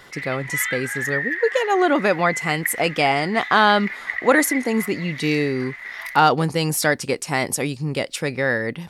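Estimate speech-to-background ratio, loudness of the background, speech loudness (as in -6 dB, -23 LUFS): 7.5 dB, -28.5 LUFS, -21.0 LUFS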